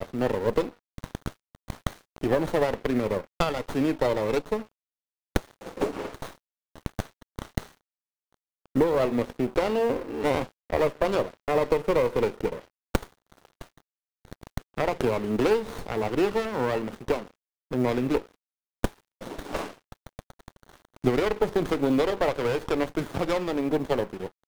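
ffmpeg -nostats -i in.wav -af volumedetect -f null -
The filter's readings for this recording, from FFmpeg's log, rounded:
mean_volume: -28.1 dB
max_volume: -7.5 dB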